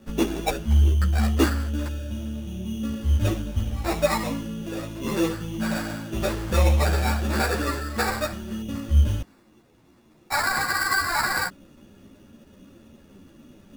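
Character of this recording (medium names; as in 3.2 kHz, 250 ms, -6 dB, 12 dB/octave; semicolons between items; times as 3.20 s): aliases and images of a low sample rate 3.1 kHz, jitter 0%; a shimmering, thickened sound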